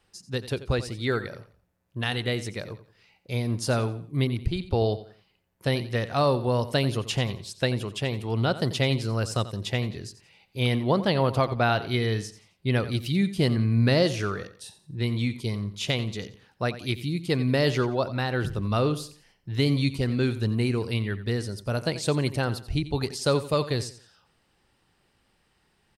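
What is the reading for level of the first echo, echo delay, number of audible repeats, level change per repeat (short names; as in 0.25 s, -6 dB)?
-14.5 dB, 88 ms, 3, -10.0 dB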